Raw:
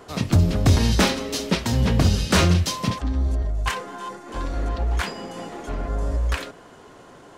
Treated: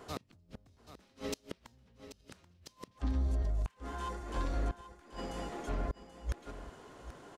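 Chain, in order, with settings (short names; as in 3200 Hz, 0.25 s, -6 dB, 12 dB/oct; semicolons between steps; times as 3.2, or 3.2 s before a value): compressor 10:1, threshold -20 dBFS, peak gain reduction 9 dB; flipped gate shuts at -17 dBFS, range -34 dB; echo 0.783 s -13 dB; gain -7 dB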